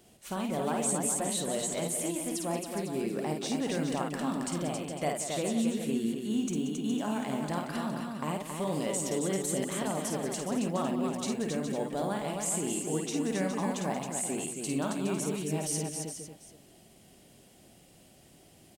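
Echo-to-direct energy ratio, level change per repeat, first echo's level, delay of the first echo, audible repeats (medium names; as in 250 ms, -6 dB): 0.0 dB, no regular repeats, -4.5 dB, 52 ms, 6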